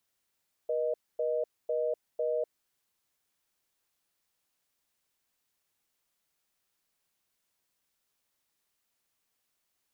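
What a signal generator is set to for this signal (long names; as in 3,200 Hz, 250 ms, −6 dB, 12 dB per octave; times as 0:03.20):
call progress tone reorder tone, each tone −30 dBFS 1.87 s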